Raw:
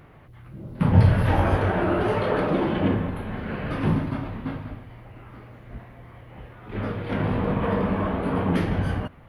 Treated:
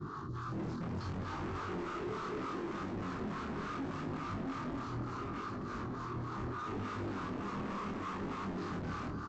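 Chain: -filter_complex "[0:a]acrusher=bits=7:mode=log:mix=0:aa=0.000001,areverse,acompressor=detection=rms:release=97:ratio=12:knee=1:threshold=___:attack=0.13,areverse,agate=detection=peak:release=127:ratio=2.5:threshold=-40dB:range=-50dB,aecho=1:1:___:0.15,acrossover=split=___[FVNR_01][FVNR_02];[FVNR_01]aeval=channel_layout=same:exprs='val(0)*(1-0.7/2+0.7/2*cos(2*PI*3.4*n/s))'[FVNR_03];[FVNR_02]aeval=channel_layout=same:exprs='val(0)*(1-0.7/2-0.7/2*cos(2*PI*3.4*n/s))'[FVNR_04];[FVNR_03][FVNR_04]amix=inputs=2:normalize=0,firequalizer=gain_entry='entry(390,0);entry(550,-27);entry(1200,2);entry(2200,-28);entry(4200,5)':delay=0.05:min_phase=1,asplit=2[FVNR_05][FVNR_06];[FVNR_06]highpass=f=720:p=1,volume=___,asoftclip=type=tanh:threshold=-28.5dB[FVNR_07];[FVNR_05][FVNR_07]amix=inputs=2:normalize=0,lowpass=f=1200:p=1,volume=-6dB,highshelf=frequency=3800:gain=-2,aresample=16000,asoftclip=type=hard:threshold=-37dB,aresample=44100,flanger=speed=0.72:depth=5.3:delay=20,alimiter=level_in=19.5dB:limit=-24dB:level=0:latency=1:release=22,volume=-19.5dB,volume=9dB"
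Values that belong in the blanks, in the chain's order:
-31dB, 263, 620, 36dB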